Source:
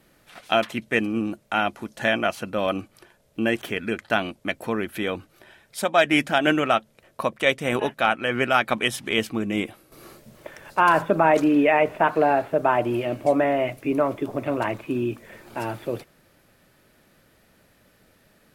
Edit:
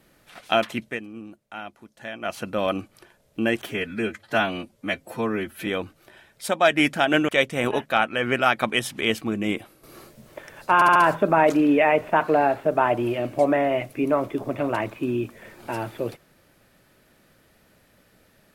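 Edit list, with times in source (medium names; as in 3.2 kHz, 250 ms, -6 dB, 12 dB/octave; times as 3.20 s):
0.82–2.37 s: dip -13.5 dB, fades 0.17 s
3.67–5.00 s: stretch 1.5×
6.62–7.37 s: delete
10.83 s: stutter 0.07 s, 4 plays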